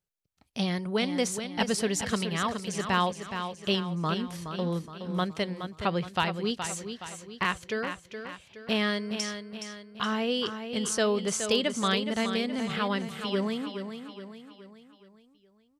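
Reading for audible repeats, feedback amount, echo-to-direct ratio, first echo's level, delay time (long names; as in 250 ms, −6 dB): 5, 47%, −7.5 dB, −8.5 dB, 420 ms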